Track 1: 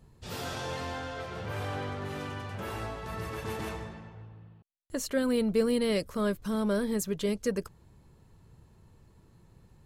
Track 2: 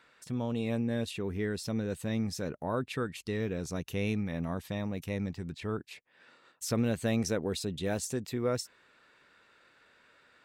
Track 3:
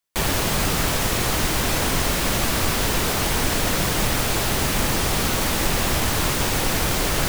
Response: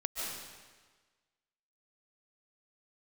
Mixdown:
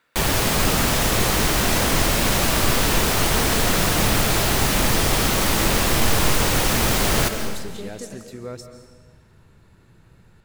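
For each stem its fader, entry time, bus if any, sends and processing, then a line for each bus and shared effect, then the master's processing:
+0.5 dB, 0.55 s, send -4 dB, compression 3:1, threshold -42 dBFS, peak gain reduction 15.5 dB
-6.5 dB, 0.00 s, send -7.5 dB, none
-1.5 dB, 0.00 s, send -6.5 dB, none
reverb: on, RT60 1.4 s, pre-delay 105 ms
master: none

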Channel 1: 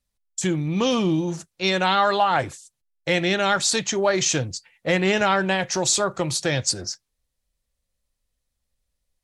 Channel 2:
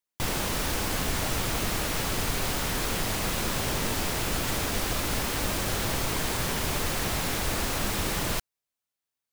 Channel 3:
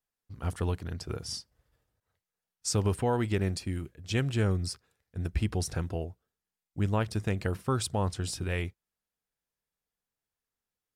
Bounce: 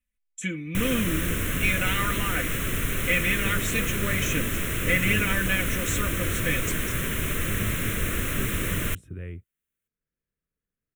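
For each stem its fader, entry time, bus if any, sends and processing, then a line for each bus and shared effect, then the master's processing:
-7.5 dB, 0.00 s, no send, peaking EQ 2.3 kHz +8.5 dB 0.77 oct; comb 4 ms, depth 82%
+3.0 dB, 0.55 s, no send, none
-11.0 dB, 0.70 s, no send, tilt shelf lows +7 dB, about 1.4 kHz; three bands compressed up and down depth 40%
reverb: none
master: static phaser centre 2 kHz, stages 4

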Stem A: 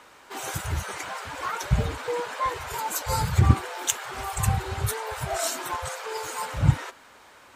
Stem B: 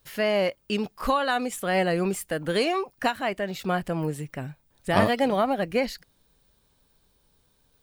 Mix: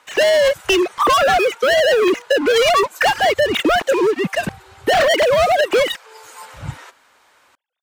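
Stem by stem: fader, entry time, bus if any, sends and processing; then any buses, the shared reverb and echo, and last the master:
-2.0 dB, 0.00 s, no send, bass shelf 420 Hz -8.5 dB; auto duck -7 dB, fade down 1.45 s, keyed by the second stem
+2.5 dB, 0.00 s, no send, formants replaced by sine waves; treble shelf 2.7 kHz +10 dB; waveshaping leveller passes 5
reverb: none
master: compression, threshold -13 dBFS, peak gain reduction 6 dB

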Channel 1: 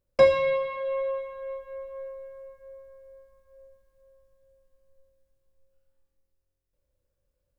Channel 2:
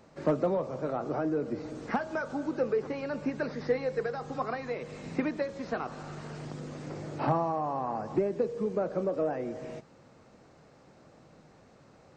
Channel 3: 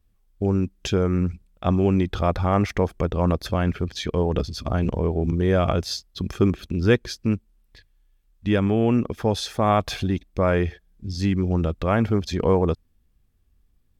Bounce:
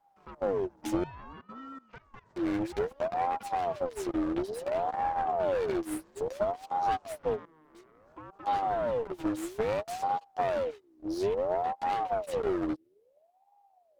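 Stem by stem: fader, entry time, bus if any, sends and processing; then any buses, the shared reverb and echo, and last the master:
-7.5 dB, 0.65 s, bus A, no send, rotary cabinet horn 8 Hz
-9.5 dB, 0.00 s, bus A, no send, peaking EQ 1.1 kHz -4.5 dB 0.22 oct; Chebyshev shaper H 4 -25 dB, 7 -28 dB, 8 -21 dB, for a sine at -14 dBFS
-2.5 dB, 0.00 s, muted 1.04–2.36 s, no bus, no send, compression 10:1, threshold -21 dBFS, peak gain reduction 10 dB; full-wave rectifier; three-phase chorus
bus A: 0.0 dB, level held to a coarse grid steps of 20 dB; peak limiter -35 dBFS, peak gain reduction 7 dB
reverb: none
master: ring modulator with a swept carrier 560 Hz, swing 45%, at 0.59 Hz

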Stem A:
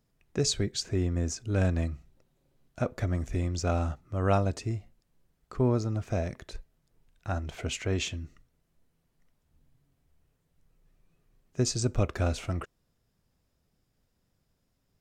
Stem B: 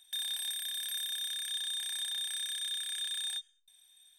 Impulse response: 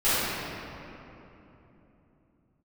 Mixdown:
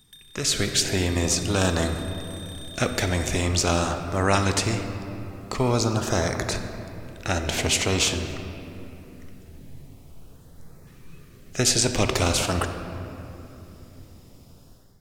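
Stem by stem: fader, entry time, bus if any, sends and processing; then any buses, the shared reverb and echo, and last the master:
-3.0 dB, 0.00 s, send -23.5 dB, LFO notch saw up 0.46 Hz 560–3200 Hz; spectrum-flattening compressor 2:1
+1.0 dB, 0.00 s, no send, compression, threshold -42 dBFS, peak gain reduction 9 dB; auto duck -12 dB, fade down 0.25 s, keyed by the first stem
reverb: on, RT60 3.2 s, pre-delay 5 ms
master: level rider gain up to 12 dB

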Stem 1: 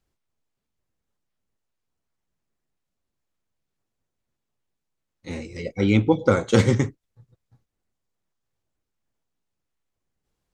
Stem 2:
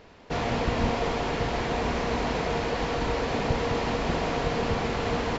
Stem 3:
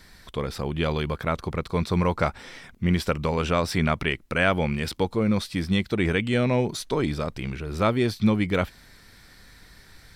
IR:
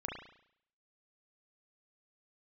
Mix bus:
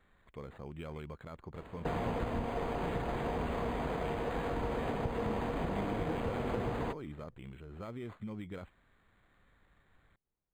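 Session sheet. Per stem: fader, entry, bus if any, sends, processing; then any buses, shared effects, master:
-12.0 dB, 0.00 s, bus A, no send, none
+1.0 dB, 1.55 s, bus A, no send, none
-16.5 dB, 0.00 s, no bus, no send, peak limiter -17.5 dBFS, peak gain reduction 10 dB
bus A: 0.0 dB, low-pass 3.1 kHz 6 dB/octave; compression, threshold -32 dBFS, peak gain reduction 12.5 dB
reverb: none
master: decimation joined by straight lines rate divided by 8×

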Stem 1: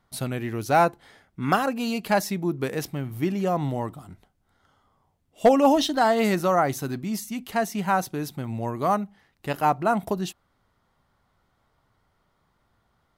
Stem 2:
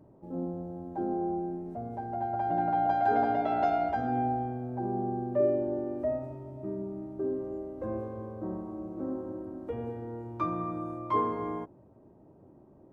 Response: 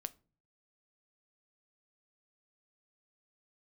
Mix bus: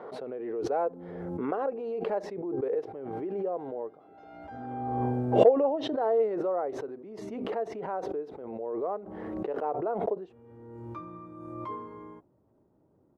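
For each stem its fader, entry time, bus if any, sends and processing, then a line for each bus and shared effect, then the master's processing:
+1.0 dB, 0.00 s, no send, ladder band-pass 490 Hz, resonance 70%
-11.0 dB, 0.55 s, no send, band-stop 700 Hz, Q 12; auto duck -22 dB, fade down 1.90 s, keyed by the first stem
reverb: none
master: swell ahead of each attack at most 29 dB/s

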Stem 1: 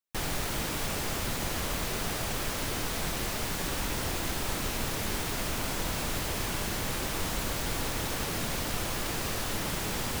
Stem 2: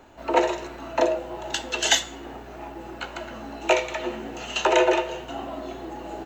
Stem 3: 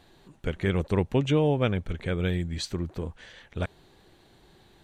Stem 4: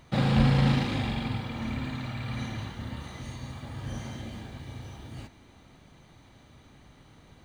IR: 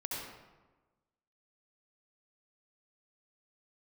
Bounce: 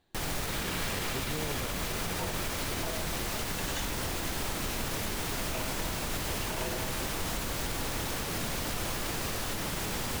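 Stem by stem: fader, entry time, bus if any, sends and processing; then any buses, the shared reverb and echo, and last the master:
-0.5 dB, 0.00 s, no send, none
-18.5 dB, 1.85 s, no send, none
-14.5 dB, 0.00 s, no send, none
-3.0 dB, 0.35 s, no send, high-pass 1.2 kHz 24 dB/octave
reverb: none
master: peak limiter -23 dBFS, peak gain reduction 5 dB

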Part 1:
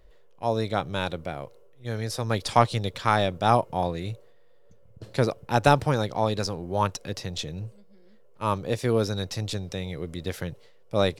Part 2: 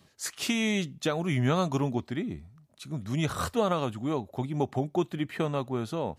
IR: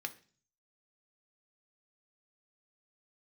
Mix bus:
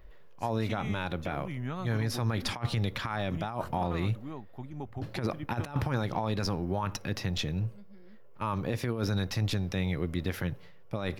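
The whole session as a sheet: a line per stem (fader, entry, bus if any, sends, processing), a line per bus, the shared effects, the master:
+1.0 dB, 0.00 s, send -10 dB, none
-11.5 dB, 0.20 s, no send, none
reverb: on, RT60 0.40 s, pre-delay 3 ms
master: compressor with a negative ratio -23 dBFS, ratio -0.5; ten-band graphic EQ 500 Hz -7 dB, 4 kHz -5 dB, 8 kHz -12 dB; peak limiter -19 dBFS, peak gain reduction 10 dB

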